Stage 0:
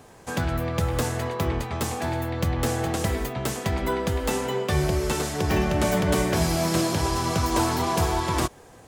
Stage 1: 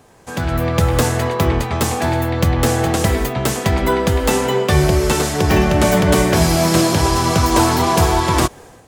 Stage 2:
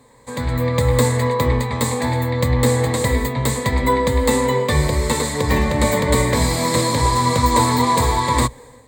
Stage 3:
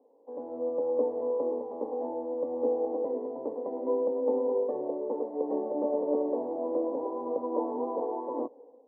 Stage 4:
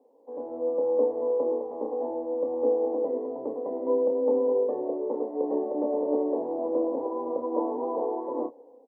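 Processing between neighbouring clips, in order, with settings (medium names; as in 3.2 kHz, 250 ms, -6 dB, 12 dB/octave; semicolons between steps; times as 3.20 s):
level rider gain up to 11.5 dB
rippled EQ curve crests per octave 1, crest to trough 14 dB; trim -4.5 dB
elliptic band-pass 290–770 Hz, stop band 60 dB; trim -7 dB
doubling 30 ms -7 dB; trim +1.5 dB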